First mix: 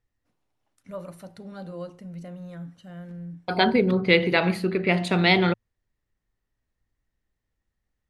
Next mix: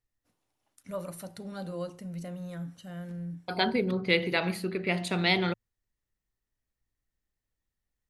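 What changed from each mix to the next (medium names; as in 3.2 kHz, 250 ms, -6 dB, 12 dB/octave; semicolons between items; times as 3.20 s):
second voice -7.5 dB; master: remove low-pass 3.3 kHz 6 dB/octave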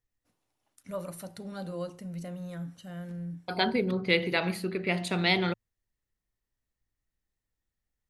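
no change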